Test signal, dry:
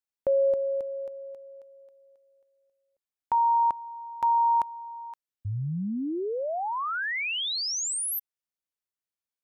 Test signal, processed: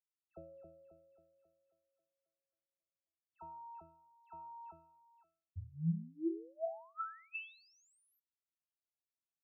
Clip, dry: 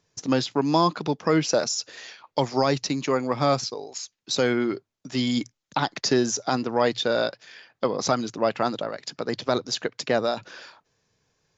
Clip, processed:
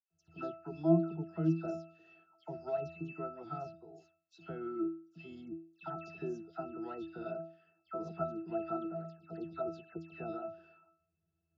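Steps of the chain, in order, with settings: pitch-class resonator E, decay 0.44 s; phase dispersion lows, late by 109 ms, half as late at 2.2 kHz; trim +4.5 dB

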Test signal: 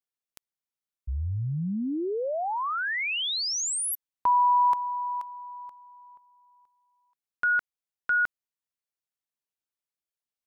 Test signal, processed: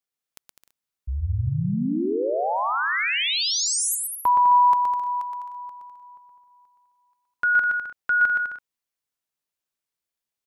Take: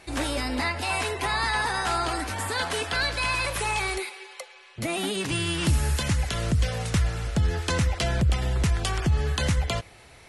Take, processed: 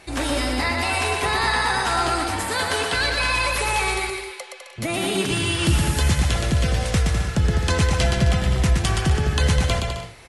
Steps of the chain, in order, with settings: bouncing-ball echo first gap 120 ms, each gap 0.7×, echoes 5; trim +3 dB

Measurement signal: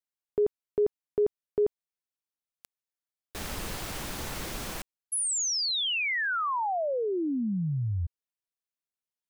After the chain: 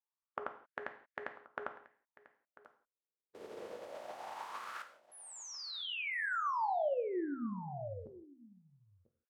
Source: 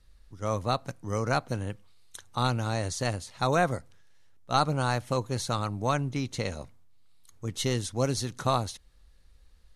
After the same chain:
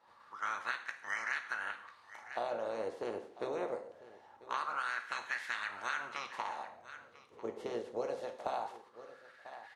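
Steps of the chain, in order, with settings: spectral peaks clipped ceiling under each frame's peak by 28 dB; wah-wah 0.23 Hz 420–1800 Hz, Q 5.4; delay 994 ms -20 dB; compression 6:1, threshold -41 dBFS; gated-style reverb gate 200 ms falling, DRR 6 dB; trim +7 dB

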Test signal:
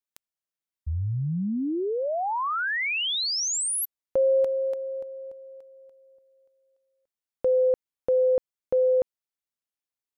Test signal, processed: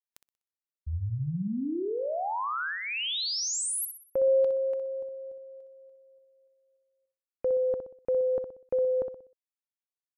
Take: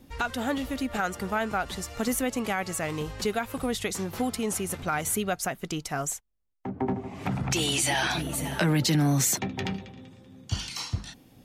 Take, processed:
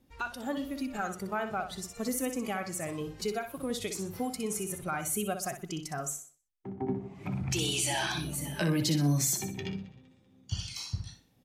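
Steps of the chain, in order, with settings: dynamic bell 2 kHz, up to -6 dB, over -47 dBFS, Q 3.8; feedback delay 62 ms, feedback 42%, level -7.5 dB; spectral noise reduction 9 dB; trim -4.5 dB

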